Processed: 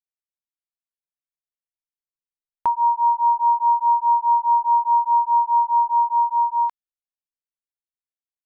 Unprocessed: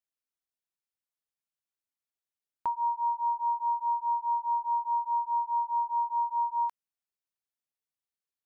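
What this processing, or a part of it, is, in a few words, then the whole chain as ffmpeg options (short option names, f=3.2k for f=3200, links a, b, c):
voice memo with heavy noise removal: -af "anlmdn=0.158,dynaudnorm=f=240:g=17:m=11.5dB"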